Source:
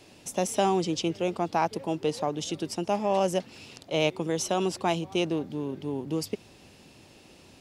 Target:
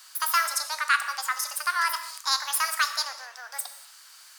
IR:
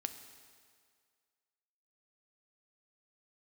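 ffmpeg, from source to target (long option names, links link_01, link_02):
-filter_complex "[0:a]highpass=frequency=780:width=0.5412,highpass=frequency=780:width=1.3066[link_01];[1:a]atrim=start_sample=2205,afade=type=out:start_time=0.4:duration=0.01,atrim=end_sample=18081,asetrate=35721,aresample=44100[link_02];[link_01][link_02]afir=irnorm=-1:irlink=0,asetrate=76440,aresample=44100,volume=7.5dB"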